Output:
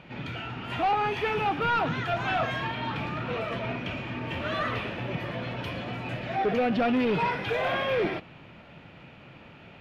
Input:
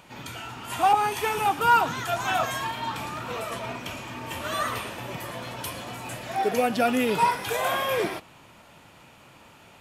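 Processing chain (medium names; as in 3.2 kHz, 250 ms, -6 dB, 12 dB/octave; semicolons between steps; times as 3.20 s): fifteen-band graphic EQ 160 Hz +4 dB, 1 kHz -7 dB, 2.5 kHz +3 dB; saturation -24 dBFS, distortion -10 dB; distance through air 310 m; trim +4.5 dB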